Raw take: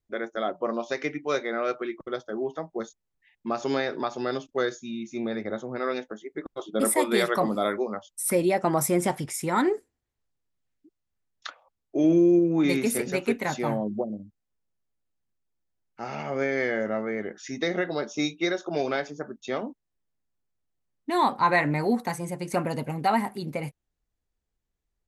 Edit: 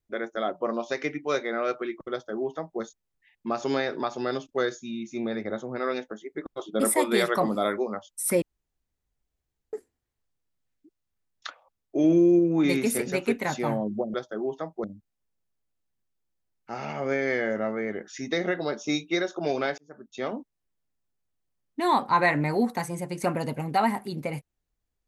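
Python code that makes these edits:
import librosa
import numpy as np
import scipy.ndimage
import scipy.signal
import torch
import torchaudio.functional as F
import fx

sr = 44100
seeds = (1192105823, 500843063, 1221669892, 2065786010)

y = fx.edit(x, sr, fx.duplicate(start_s=2.11, length_s=0.7, to_s=14.14),
    fx.room_tone_fill(start_s=8.42, length_s=1.31),
    fx.fade_in_span(start_s=19.08, length_s=0.54), tone=tone)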